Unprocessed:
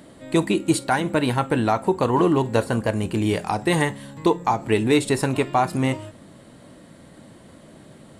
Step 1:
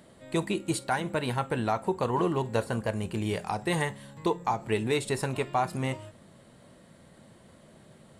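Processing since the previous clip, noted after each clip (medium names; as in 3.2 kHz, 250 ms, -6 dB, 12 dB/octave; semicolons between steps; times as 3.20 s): peaking EQ 290 Hz -9.5 dB 0.27 oct; trim -7 dB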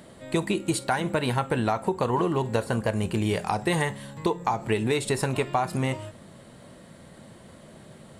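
compression, threshold -27 dBFS, peak gain reduction 6 dB; trim +6.5 dB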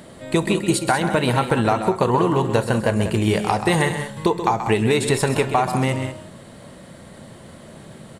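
loudspeakers at several distances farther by 45 m -10 dB, 66 m -11 dB; trim +6 dB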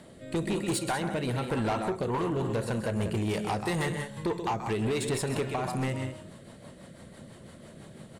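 rotary cabinet horn 1 Hz, later 6 Hz, at 1.76 s; saturation -19 dBFS, distortion -10 dB; trim -5 dB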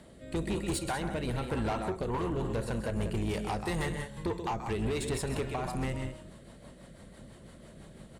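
octave divider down 2 oct, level -4 dB; trim -3.5 dB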